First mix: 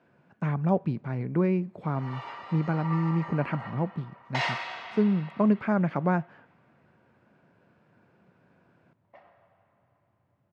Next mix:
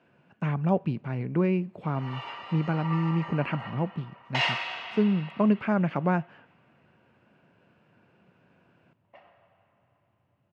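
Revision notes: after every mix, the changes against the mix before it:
master: add parametric band 2,800 Hz +9.5 dB 0.36 octaves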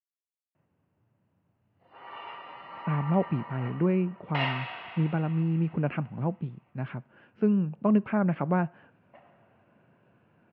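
speech: entry +2.45 s
master: add high-frequency loss of the air 370 metres

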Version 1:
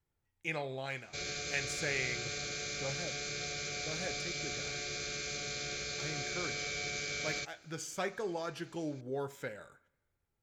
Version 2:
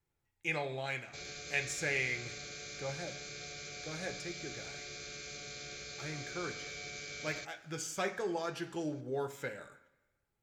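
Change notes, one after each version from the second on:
speech: send +9.5 dB
background −6.5 dB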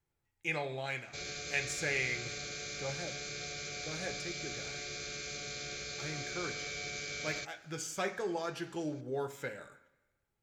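background +4.0 dB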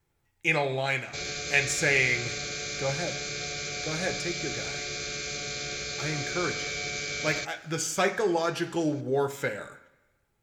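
speech +10.0 dB
background +7.5 dB

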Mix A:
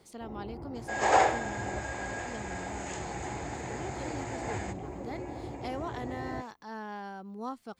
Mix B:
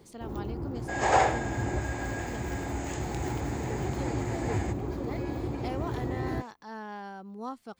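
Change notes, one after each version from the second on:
first sound: remove Chebyshev low-pass with heavy ripple 2,900 Hz, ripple 9 dB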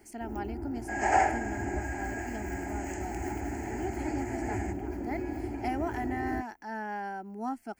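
speech +6.5 dB
master: add phaser with its sweep stopped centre 750 Hz, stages 8

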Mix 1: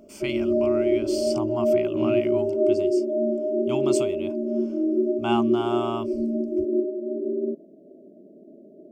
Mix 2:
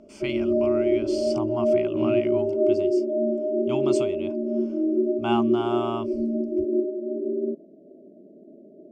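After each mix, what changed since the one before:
master: add high-frequency loss of the air 70 metres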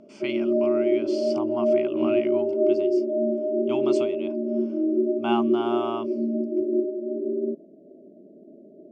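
speech: add band-pass filter 230–5,300 Hz

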